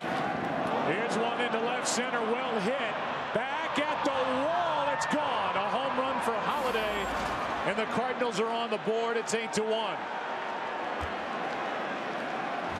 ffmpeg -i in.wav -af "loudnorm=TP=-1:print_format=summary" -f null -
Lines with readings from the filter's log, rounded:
Input Integrated:    -30.7 LUFS
Input True Peak:     -13.7 dBTP
Input LRA:             4.3 LU
Input Threshold:     -40.7 LUFS